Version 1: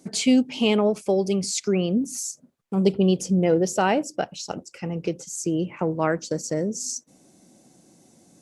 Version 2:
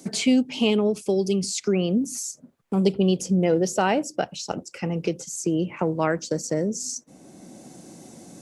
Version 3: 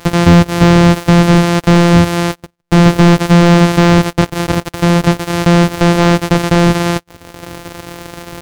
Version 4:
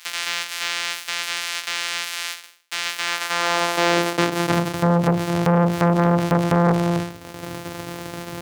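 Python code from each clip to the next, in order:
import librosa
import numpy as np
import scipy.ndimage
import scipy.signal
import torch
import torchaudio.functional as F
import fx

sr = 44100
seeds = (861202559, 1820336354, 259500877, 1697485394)

y1 = fx.spec_box(x, sr, start_s=0.7, length_s=0.88, low_hz=460.0, high_hz=2500.0, gain_db=-7)
y1 = fx.band_squash(y1, sr, depth_pct=40)
y2 = np.r_[np.sort(y1[:len(y1) // 256 * 256].reshape(-1, 256), axis=1).ravel(), y1[len(y1) // 256 * 256:]]
y2 = fx.leveller(y2, sr, passes=3)
y2 = fx.slew_limit(y2, sr, full_power_hz=1300.0)
y2 = y2 * librosa.db_to_amplitude(7.0)
y3 = fx.spec_trails(y2, sr, decay_s=0.46)
y3 = fx.filter_sweep_highpass(y3, sr, from_hz=2300.0, to_hz=99.0, start_s=2.93, end_s=4.91, q=0.86)
y3 = fx.transformer_sat(y3, sr, knee_hz=1000.0)
y3 = y3 * librosa.db_to_amplitude(-4.0)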